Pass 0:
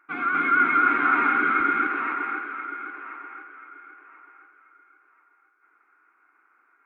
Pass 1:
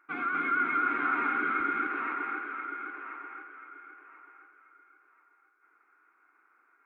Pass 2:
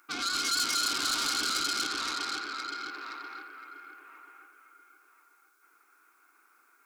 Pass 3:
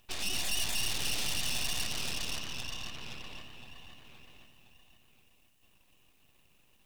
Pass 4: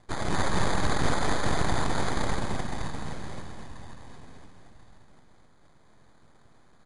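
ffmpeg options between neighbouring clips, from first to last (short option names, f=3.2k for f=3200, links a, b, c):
-af "equalizer=f=440:w=1.5:g=2,acompressor=threshold=-30dB:ratio=1.5,volume=-3.5dB"
-af "asoftclip=type=tanh:threshold=-33.5dB,aexciter=amount=3.1:drive=9.7:freq=3k,volume=1.5dB"
-filter_complex "[0:a]acrossover=split=5400[a][b];[b]alimiter=level_in=6.5dB:limit=-24dB:level=0:latency=1,volume=-6.5dB[c];[a][c]amix=inputs=2:normalize=0,aeval=exprs='abs(val(0))':c=same"
-filter_complex "[0:a]acrusher=samples=16:mix=1:aa=0.000001,asplit=2[a][b];[b]aecho=0:1:212:0.531[c];[a][c]amix=inputs=2:normalize=0,aresample=22050,aresample=44100,volume=6.5dB"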